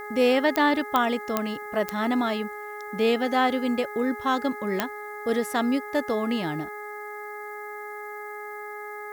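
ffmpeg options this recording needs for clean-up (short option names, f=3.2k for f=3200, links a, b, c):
-af "adeclick=t=4,bandreject=f=417.8:t=h:w=4,bandreject=f=835.6:t=h:w=4,bandreject=f=1.2534k:t=h:w=4,bandreject=f=1.6712k:t=h:w=4,bandreject=f=2.089k:t=h:w=4,agate=range=-21dB:threshold=-29dB"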